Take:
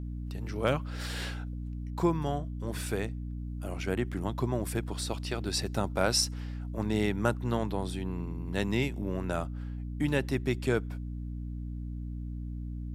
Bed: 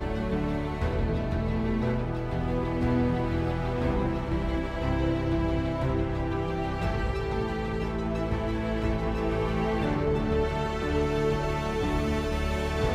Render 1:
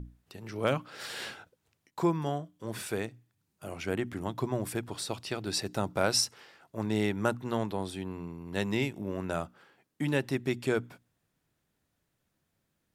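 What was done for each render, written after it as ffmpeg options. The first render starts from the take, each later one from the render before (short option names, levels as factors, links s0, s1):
-af "bandreject=f=60:t=h:w=6,bandreject=f=120:t=h:w=6,bandreject=f=180:t=h:w=6,bandreject=f=240:t=h:w=6,bandreject=f=300:t=h:w=6"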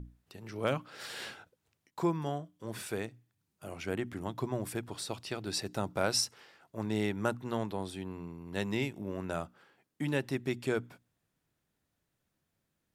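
-af "volume=0.708"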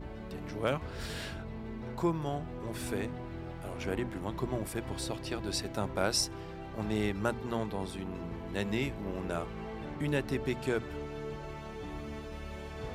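-filter_complex "[1:a]volume=0.2[s0];[0:a][s0]amix=inputs=2:normalize=0"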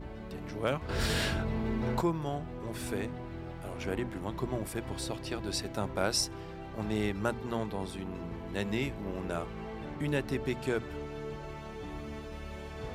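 -filter_complex "[0:a]asplit=3[s0][s1][s2];[s0]atrim=end=0.892[s3];[s1]atrim=start=0.888:end=2.012,asetpts=PTS-STARTPTS,volume=2.82[s4];[s2]atrim=start=2.008[s5];[s3][s4]acrossfade=d=0.004:c1=hsin:c2=hsin[s6];[s6][s5]acrossfade=d=0.004:c1=hsin:c2=hsin"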